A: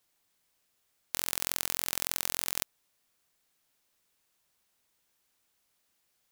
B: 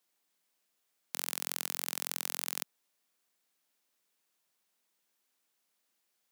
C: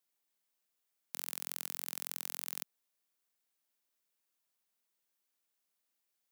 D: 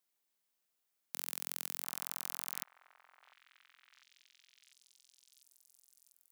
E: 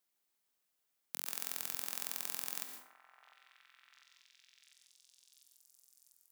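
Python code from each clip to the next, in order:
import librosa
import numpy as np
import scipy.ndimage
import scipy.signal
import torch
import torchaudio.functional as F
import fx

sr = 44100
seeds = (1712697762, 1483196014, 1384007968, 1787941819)

y1 = scipy.signal.sosfilt(scipy.signal.butter(4, 170.0, 'highpass', fs=sr, output='sos'), x)
y1 = F.gain(torch.from_numpy(y1), -4.0).numpy()
y2 = fx.high_shelf(y1, sr, hz=11000.0, db=5.5)
y2 = F.gain(torch.from_numpy(y2), -7.5).numpy()
y3 = fx.echo_stepped(y2, sr, ms=698, hz=1000.0, octaves=0.7, feedback_pct=70, wet_db=-9.5)
y4 = fx.rev_plate(y3, sr, seeds[0], rt60_s=0.64, hf_ratio=0.6, predelay_ms=105, drr_db=5.0)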